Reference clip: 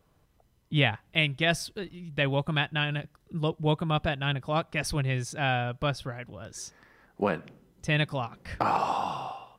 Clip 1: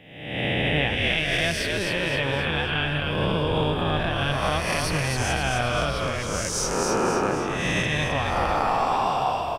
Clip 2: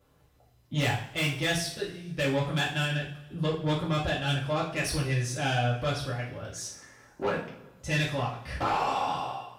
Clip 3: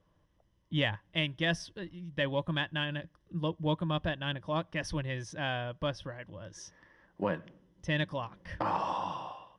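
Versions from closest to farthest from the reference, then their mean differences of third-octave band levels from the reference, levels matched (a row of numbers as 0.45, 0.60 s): 3, 2, 1; 2.5, 7.5, 12.5 dB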